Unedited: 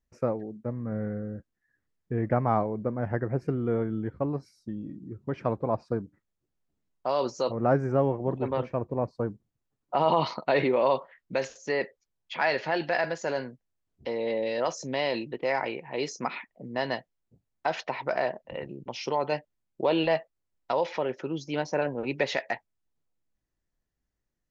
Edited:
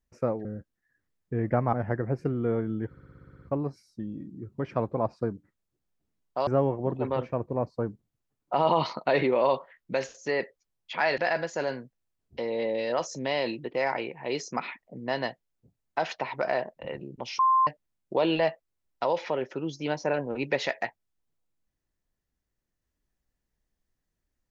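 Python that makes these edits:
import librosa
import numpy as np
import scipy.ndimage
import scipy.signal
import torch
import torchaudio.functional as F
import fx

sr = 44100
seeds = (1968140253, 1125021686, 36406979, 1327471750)

y = fx.edit(x, sr, fx.cut(start_s=0.45, length_s=0.79),
    fx.cut(start_s=2.52, length_s=0.44),
    fx.stutter(start_s=4.11, slice_s=0.06, count=10),
    fx.cut(start_s=7.16, length_s=0.72),
    fx.cut(start_s=12.59, length_s=0.27),
    fx.bleep(start_s=19.07, length_s=0.28, hz=1050.0, db=-18.0), tone=tone)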